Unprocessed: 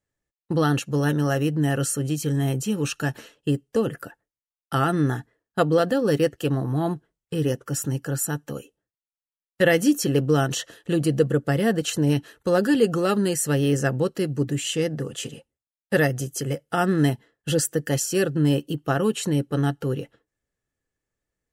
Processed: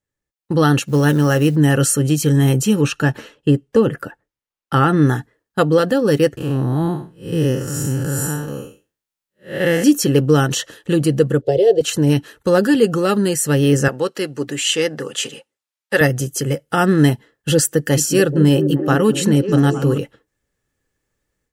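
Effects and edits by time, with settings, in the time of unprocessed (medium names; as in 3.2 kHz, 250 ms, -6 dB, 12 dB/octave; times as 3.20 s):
0.82–1.56 s: short-mantissa float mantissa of 4-bit
2.81–5.02 s: treble shelf 4.6 kHz -10.5 dB
6.37–9.84 s: spectral blur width 183 ms
11.41–11.81 s: FFT filter 120 Hz 0 dB, 230 Hz -27 dB, 390 Hz +10 dB, 700 Hz +5 dB, 1.2 kHz -26 dB, 3.7 kHz +1 dB, 10 kHz -17 dB
13.88–16.01 s: frequency weighting A
17.64–19.98 s: repeats whose band climbs or falls 215 ms, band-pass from 220 Hz, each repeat 0.7 oct, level -3.5 dB
whole clip: band-stop 680 Hz, Q 12; level rider gain up to 11.5 dB; trim -1 dB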